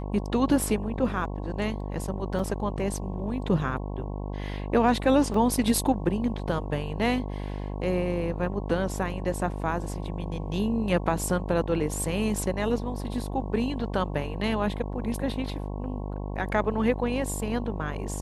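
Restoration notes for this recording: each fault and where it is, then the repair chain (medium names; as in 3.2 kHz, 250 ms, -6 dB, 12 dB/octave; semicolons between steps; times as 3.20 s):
buzz 50 Hz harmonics 22 -33 dBFS
2.39 s: dropout 4.3 ms
5.34 s: dropout 3.3 ms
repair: de-hum 50 Hz, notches 22; interpolate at 2.39 s, 4.3 ms; interpolate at 5.34 s, 3.3 ms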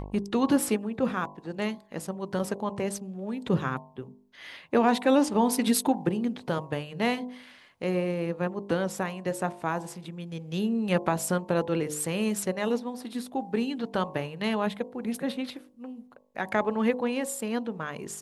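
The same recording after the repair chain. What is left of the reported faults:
nothing left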